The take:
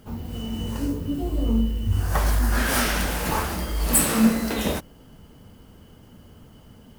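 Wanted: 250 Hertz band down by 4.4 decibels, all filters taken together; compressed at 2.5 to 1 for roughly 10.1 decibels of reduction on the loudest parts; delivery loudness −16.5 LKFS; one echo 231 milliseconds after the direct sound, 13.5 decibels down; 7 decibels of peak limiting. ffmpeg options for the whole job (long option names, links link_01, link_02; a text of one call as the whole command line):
ffmpeg -i in.wav -af "equalizer=frequency=250:width_type=o:gain=-5,acompressor=threshold=-33dB:ratio=2.5,alimiter=level_in=0.5dB:limit=-24dB:level=0:latency=1,volume=-0.5dB,aecho=1:1:231:0.211,volume=18dB" out.wav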